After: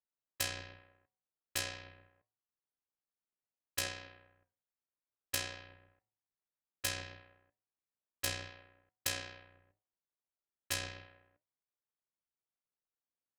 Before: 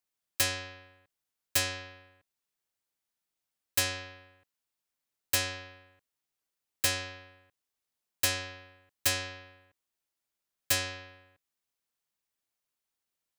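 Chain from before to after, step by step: flange 0.78 Hz, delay 5.3 ms, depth 6.1 ms, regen +78%; low-pass opened by the level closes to 1400 Hz, open at -33.5 dBFS; AM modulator 61 Hz, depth 55%; de-hum 106.5 Hz, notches 9

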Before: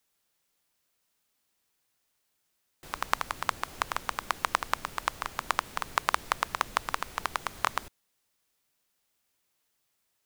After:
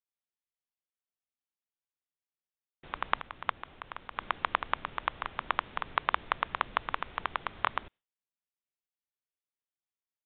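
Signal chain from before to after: gate with hold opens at -40 dBFS; 3.21–4.17 level quantiser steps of 13 dB; downsampling 8000 Hz; gain -1.5 dB

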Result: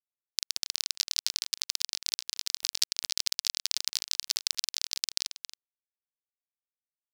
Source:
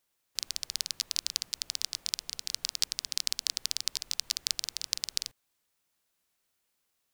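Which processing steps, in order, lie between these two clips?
outdoor echo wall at 47 m, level -10 dB; bit-crush 8-bit; sample leveller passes 1

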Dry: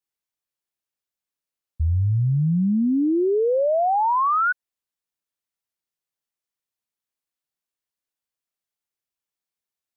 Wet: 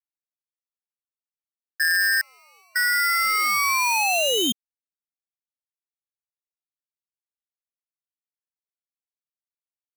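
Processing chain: Wiener smoothing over 41 samples; crossover distortion -45.5 dBFS; 2.21–2.76 brick-wall FIR band-pass 270–1300 Hz; polarity switched at an audio rate 1700 Hz

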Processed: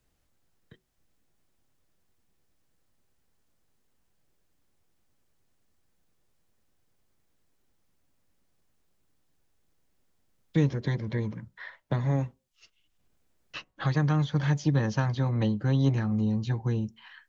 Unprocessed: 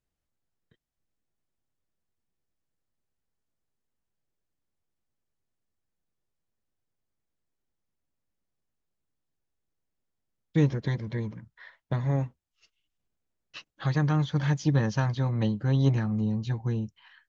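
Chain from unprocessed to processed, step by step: on a send at -20.5 dB: reverb RT60 0.35 s, pre-delay 3 ms; on the sum: three-band squash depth 40%

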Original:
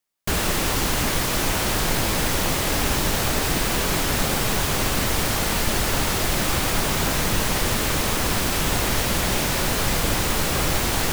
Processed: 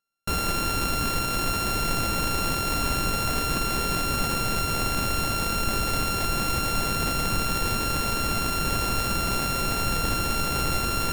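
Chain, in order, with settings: sample sorter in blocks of 32 samples; gain -3.5 dB

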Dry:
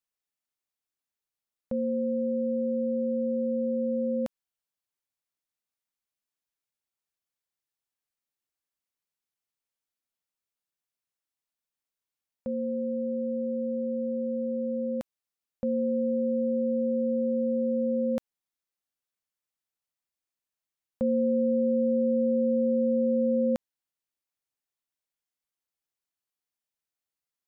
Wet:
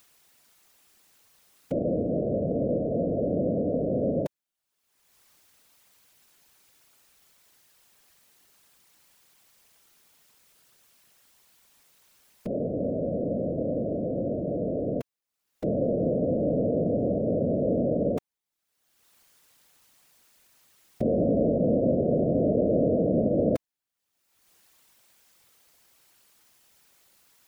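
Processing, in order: upward compressor, threshold -41 dBFS; whisperiser; gain +1.5 dB

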